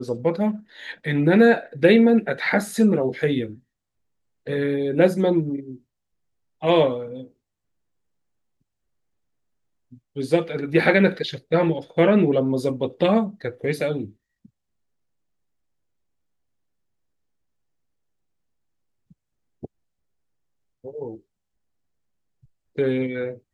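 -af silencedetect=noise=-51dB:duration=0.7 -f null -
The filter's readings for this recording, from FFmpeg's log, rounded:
silence_start: 3.60
silence_end: 4.46 | silence_duration: 0.86
silence_start: 5.79
silence_end: 6.61 | silence_duration: 0.82
silence_start: 7.31
silence_end: 9.92 | silence_duration: 2.61
silence_start: 14.46
silence_end: 19.11 | silence_duration: 4.64
silence_start: 19.66
silence_end: 20.84 | silence_duration: 1.18
silence_start: 21.21
silence_end: 22.44 | silence_duration: 1.23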